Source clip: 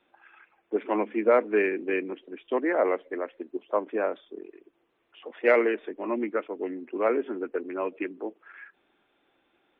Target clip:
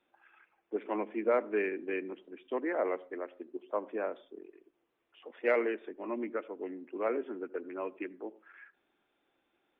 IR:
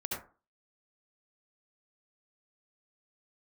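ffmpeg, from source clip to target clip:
-filter_complex "[0:a]asplit=2[s0][s1];[1:a]atrim=start_sample=2205,lowpass=f=1100:p=1[s2];[s1][s2]afir=irnorm=-1:irlink=0,volume=0.1[s3];[s0][s3]amix=inputs=2:normalize=0,volume=0.398"

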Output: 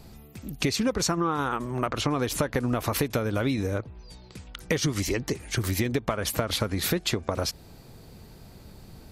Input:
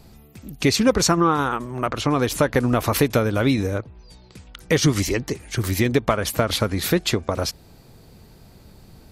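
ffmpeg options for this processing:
-af "acompressor=threshold=0.0708:ratio=5"

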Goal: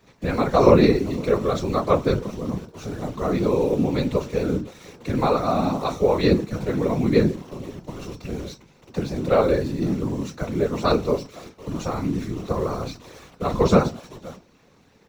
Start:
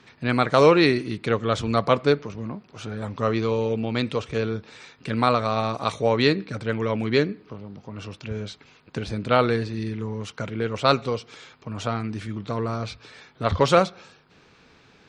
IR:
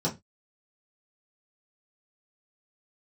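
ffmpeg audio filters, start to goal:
-filter_complex "[0:a]equalizer=f=3100:t=o:w=0.25:g=-14.5,asplit=2[s0][s1];[s1]alimiter=limit=0.168:level=0:latency=1:release=117,volume=0.841[s2];[s0][s2]amix=inputs=2:normalize=0,asplit=2[s3][s4];[s4]adelay=513.1,volume=0.0794,highshelf=f=4000:g=-11.5[s5];[s3][s5]amix=inputs=2:normalize=0,acrusher=bits=7:dc=4:mix=0:aa=0.000001,asplit=2[s6][s7];[1:a]atrim=start_sample=2205,highshelf=f=6000:g=11[s8];[s7][s8]afir=irnorm=-1:irlink=0,volume=0.335[s9];[s6][s9]amix=inputs=2:normalize=0,afftfilt=real='hypot(re,im)*cos(2*PI*random(0))':imag='hypot(re,im)*sin(2*PI*random(1))':win_size=512:overlap=0.75,volume=0.841"

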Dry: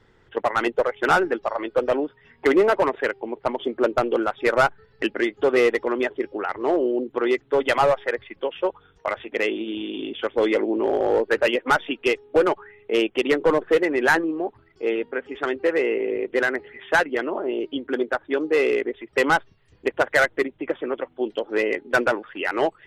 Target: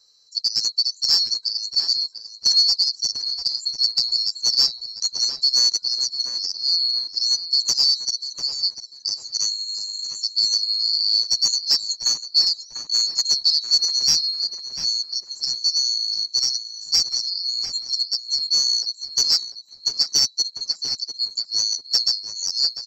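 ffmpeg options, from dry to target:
-filter_complex "[0:a]afftfilt=real='real(if(lt(b,736),b+184*(1-2*mod(floor(b/184),2)),b),0)':imag='imag(if(lt(b,736),b+184*(1-2*mod(floor(b/184),2)),b),0)':win_size=2048:overlap=0.75,asplit=2[s0][s1];[s1]adelay=695,lowpass=f=2300:p=1,volume=0.562,asplit=2[s2][s3];[s3]adelay=695,lowpass=f=2300:p=1,volume=0.47,asplit=2[s4][s5];[s5]adelay=695,lowpass=f=2300:p=1,volume=0.47,asplit=2[s6][s7];[s7]adelay=695,lowpass=f=2300:p=1,volume=0.47,asplit=2[s8][s9];[s9]adelay=695,lowpass=f=2300:p=1,volume=0.47,asplit=2[s10][s11];[s11]adelay=695,lowpass=f=2300:p=1,volume=0.47[s12];[s0][s2][s4][s6][s8][s10][s12]amix=inputs=7:normalize=0"

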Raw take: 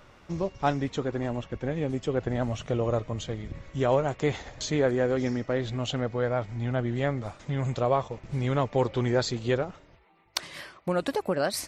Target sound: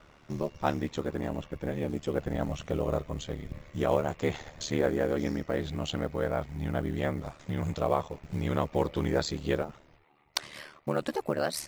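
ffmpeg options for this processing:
-af "aeval=exprs='val(0)*sin(2*PI*37*n/s)':c=same,acrusher=bits=8:mode=log:mix=0:aa=0.000001"

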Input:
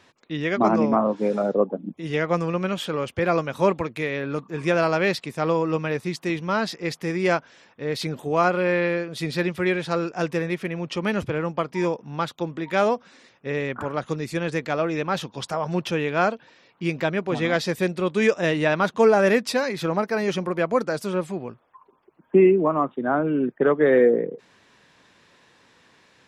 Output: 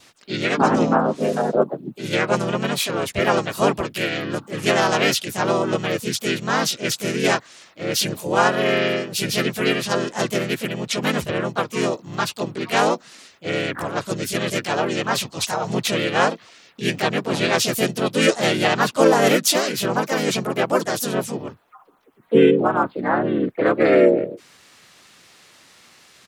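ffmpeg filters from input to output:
-filter_complex "[0:a]adynamicequalizer=threshold=0.00631:dfrequency=1800:dqfactor=3.4:tfrequency=1800:tqfactor=3.4:attack=5:release=100:ratio=0.375:range=2:mode=cutabove:tftype=bell,crystalizer=i=4:c=0,asplit=4[s0][s1][s2][s3];[s1]asetrate=33038,aresample=44100,atempo=1.33484,volume=0.794[s4];[s2]asetrate=52444,aresample=44100,atempo=0.840896,volume=1[s5];[s3]asetrate=58866,aresample=44100,atempo=0.749154,volume=0.447[s6];[s0][s4][s5][s6]amix=inputs=4:normalize=0,volume=0.708"

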